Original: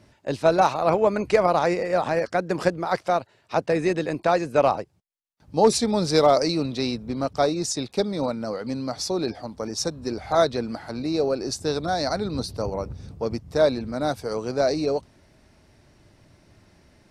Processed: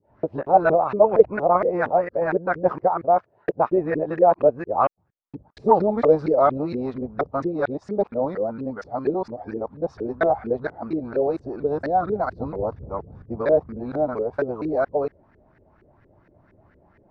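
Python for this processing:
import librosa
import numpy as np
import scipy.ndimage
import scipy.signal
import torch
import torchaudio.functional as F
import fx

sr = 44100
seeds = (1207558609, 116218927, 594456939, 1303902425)

y = fx.local_reverse(x, sr, ms=232.0)
y = fx.filter_lfo_lowpass(y, sr, shape='saw_up', hz=4.3, low_hz=380.0, high_hz=1900.0, q=3.6)
y = y * librosa.db_to_amplitude(-3.0)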